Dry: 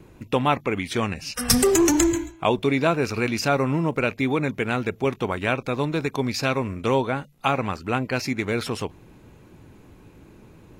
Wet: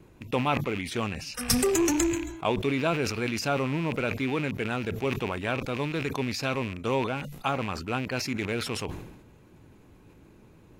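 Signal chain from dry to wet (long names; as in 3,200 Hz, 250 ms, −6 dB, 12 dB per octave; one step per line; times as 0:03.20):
loose part that buzzes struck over −32 dBFS, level −22 dBFS
level that may fall only so fast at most 59 dB per second
level −6 dB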